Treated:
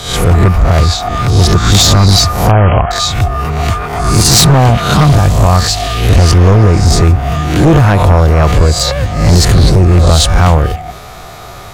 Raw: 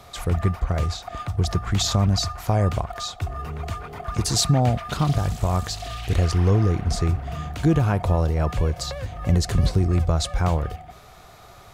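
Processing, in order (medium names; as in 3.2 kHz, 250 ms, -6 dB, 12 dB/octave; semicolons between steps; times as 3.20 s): reverse spectral sustain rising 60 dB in 0.59 s; sine folder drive 8 dB, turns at -5.5 dBFS; 2.51–2.91 s: brick-wall FIR low-pass 3.3 kHz; trim +3.5 dB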